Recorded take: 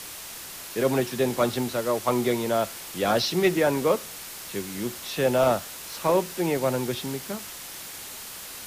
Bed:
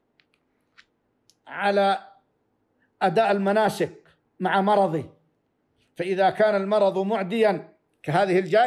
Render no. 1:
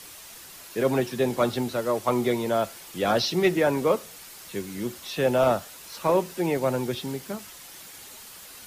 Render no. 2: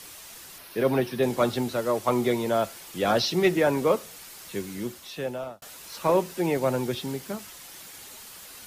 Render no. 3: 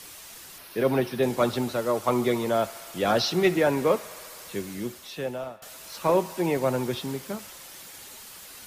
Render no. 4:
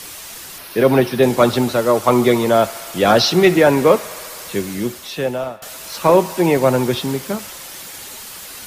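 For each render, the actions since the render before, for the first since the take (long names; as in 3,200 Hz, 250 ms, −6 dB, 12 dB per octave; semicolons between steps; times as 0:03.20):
broadband denoise 7 dB, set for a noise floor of −40 dBFS
0:00.58–0:01.23: parametric band 7,300 Hz −15 dB 0.37 octaves; 0:04.67–0:05.62: fade out
delay with a band-pass on its return 69 ms, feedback 85%, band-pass 1,500 Hz, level −18.5 dB
level +10.5 dB; brickwall limiter −1 dBFS, peak gain reduction 2 dB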